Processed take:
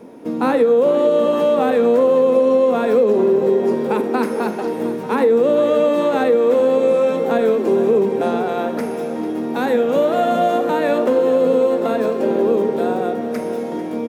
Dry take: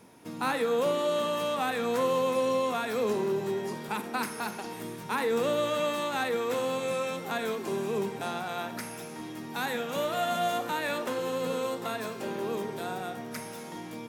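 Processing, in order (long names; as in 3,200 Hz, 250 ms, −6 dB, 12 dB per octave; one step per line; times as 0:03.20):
octave-band graphic EQ 125/250/500 Hz −5/+10/+11 dB
on a send: repeating echo 446 ms, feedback 55%, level −13.5 dB
on the sum: downward compressor, threshold −18 dBFS, peak gain reduction 6.5 dB
parametric band 11,000 Hz −8.5 dB 2.7 octaves
level +7 dB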